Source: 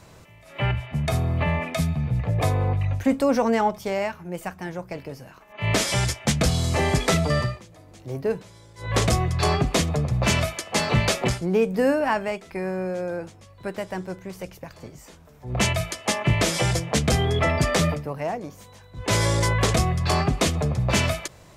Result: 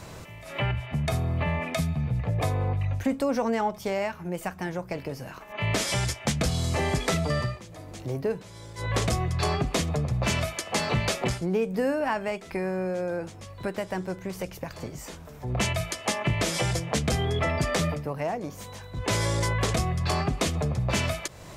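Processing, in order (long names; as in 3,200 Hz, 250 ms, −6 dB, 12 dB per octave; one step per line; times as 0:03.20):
downward compressor 2 to 1, threshold −39 dBFS, peak gain reduction 13 dB
level +6.5 dB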